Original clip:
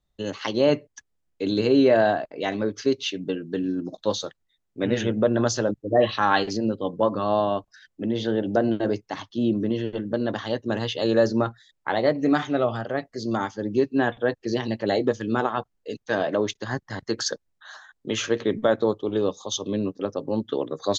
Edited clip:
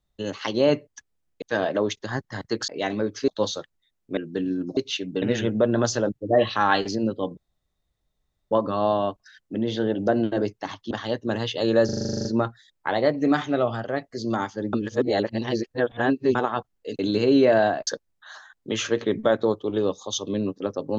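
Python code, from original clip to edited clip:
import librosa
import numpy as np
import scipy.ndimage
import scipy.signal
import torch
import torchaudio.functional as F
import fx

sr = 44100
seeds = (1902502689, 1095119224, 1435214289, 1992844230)

y = fx.edit(x, sr, fx.swap(start_s=1.42, length_s=0.88, other_s=16.0, other_length_s=1.26),
    fx.swap(start_s=2.9, length_s=0.45, other_s=3.95, other_length_s=0.89),
    fx.insert_room_tone(at_s=6.99, length_s=1.14),
    fx.cut(start_s=9.39, length_s=0.93),
    fx.stutter(start_s=11.26, slice_s=0.04, count=11),
    fx.reverse_span(start_s=13.74, length_s=1.62), tone=tone)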